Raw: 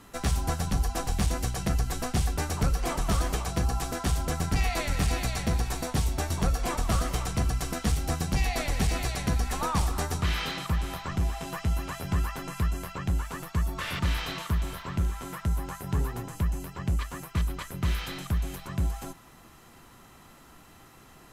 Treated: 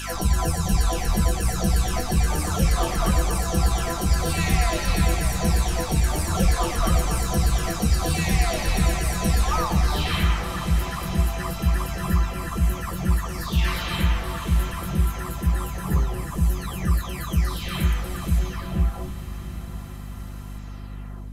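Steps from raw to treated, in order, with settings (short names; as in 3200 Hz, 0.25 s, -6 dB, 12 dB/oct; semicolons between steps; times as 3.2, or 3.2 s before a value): spectral delay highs early, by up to 0.735 s; diffused feedback echo 0.821 s, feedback 47%, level -12.5 dB; hum 50 Hz, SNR 13 dB; gain +7 dB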